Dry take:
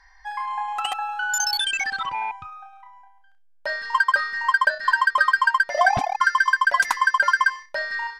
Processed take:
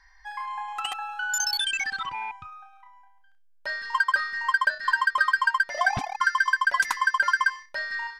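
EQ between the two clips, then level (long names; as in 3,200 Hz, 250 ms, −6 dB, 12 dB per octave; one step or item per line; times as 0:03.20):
parametric band 640 Hz −8.5 dB 0.86 octaves
−2.5 dB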